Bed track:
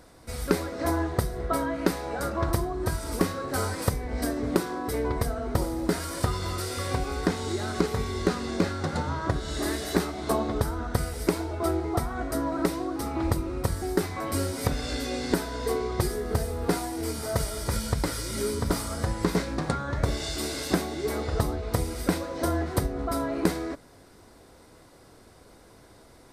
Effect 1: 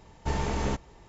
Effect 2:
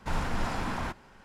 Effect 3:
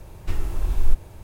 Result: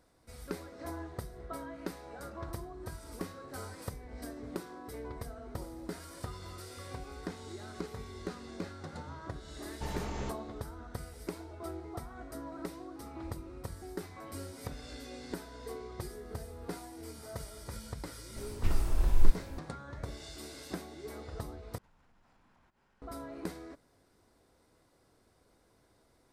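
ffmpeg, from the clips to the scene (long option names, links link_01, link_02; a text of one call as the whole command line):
ffmpeg -i bed.wav -i cue0.wav -i cue1.wav -i cue2.wav -filter_complex "[0:a]volume=-15dB[link_01];[2:a]acompressor=threshold=-49dB:ratio=6:attack=3.2:release=140:knee=1:detection=peak[link_02];[link_01]asplit=2[link_03][link_04];[link_03]atrim=end=21.784[link_05];[link_02]atrim=end=1.24,asetpts=PTS-STARTPTS,volume=-16.5dB[link_06];[link_04]atrim=start=23.016[link_07];[1:a]atrim=end=1.08,asetpts=PTS-STARTPTS,volume=-9.5dB,afade=type=in:duration=0.004:curve=hsin,afade=type=out:start_time=1.076:duration=0.004:curve=hsin,adelay=9550[link_08];[3:a]atrim=end=1.23,asetpts=PTS-STARTPTS,volume=-4dB,afade=type=in:duration=0.004:curve=hsin,afade=type=out:start_time=1.226:duration=0.004:curve=hsin,adelay=18360[link_09];[link_05][link_06]acrossfade=duration=0.004:curve1=hsin:curve2=hsin[link_10];[link_10][link_07]acrossfade=duration=0.004:curve1=hsin:curve2=hsin[link_11];[link_11][link_08][link_09]amix=inputs=3:normalize=0" out.wav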